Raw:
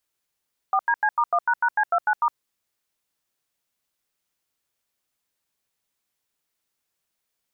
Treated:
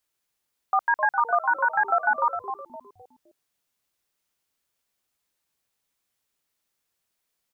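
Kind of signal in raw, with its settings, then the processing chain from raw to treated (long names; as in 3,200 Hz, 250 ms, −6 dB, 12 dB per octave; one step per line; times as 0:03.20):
touch tones "4DC*1##C29*", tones 62 ms, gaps 87 ms, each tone −20 dBFS
echo with shifted repeats 258 ms, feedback 33%, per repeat −150 Hz, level −9 dB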